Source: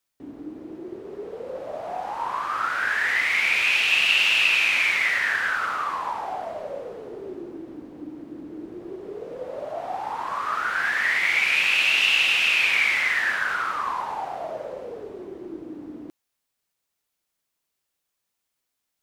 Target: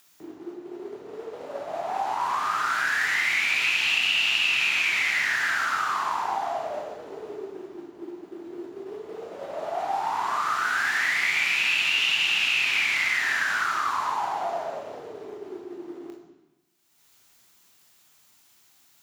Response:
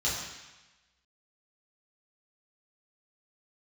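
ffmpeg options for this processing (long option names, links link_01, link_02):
-filter_complex "[0:a]agate=range=-33dB:threshold=-29dB:ratio=3:detection=peak,acompressor=mode=upward:threshold=-33dB:ratio=2.5,equalizer=frequency=480:width_type=o:width=0.23:gain=-15,afreqshift=40,highpass=95,asplit=2[link_01][link_02];[link_02]highshelf=frequency=12000:gain=11.5[link_03];[1:a]atrim=start_sample=2205,adelay=22[link_04];[link_03][link_04]afir=irnorm=-1:irlink=0,volume=-10.5dB[link_05];[link_01][link_05]amix=inputs=2:normalize=0,acrossover=split=320|4200[link_06][link_07][link_08];[link_06]acompressor=threshold=-58dB:ratio=4[link_09];[link_07]acompressor=threshold=-29dB:ratio=4[link_10];[link_08]acompressor=threshold=-42dB:ratio=4[link_11];[link_09][link_10][link_11]amix=inputs=3:normalize=0,volume=5dB"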